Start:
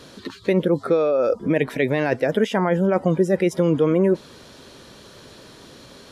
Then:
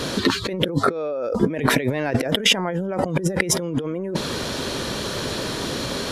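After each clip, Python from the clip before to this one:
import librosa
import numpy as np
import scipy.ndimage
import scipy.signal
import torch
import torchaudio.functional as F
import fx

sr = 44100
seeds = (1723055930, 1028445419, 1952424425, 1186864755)

y = fx.over_compress(x, sr, threshold_db=-31.0, ratio=-1.0)
y = y * 10.0 ** (8.0 / 20.0)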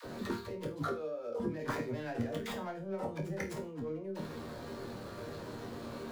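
y = scipy.signal.medfilt(x, 15)
y = fx.resonator_bank(y, sr, root=39, chord='major', decay_s=0.32)
y = fx.dispersion(y, sr, late='lows', ms=53.0, hz=440.0)
y = y * 10.0 ** (-3.0 / 20.0)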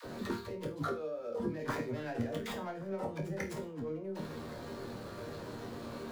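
y = x + 10.0 ** (-22.0 / 20.0) * np.pad(x, (int(1122 * sr / 1000.0), 0))[:len(x)]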